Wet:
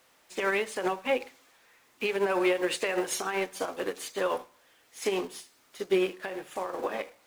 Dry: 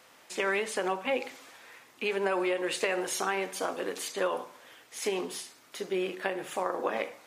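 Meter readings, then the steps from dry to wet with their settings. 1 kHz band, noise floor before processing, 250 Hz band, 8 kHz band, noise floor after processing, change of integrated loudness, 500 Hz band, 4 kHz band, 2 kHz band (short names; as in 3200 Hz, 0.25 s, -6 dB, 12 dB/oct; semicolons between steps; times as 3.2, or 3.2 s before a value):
-0.5 dB, -58 dBFS, +2.5 dB, -1.0 dB, -64 dBFS, +1.5 dB, +2.0 dB, 0.0 dB, +0.5 dB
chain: zero-crossing step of -41 dBFS; limiter -21.5 dBFS, peak gain reduction 7.5 dB; upward expander 2.5:1, over -44 dBFS; gain +7 dB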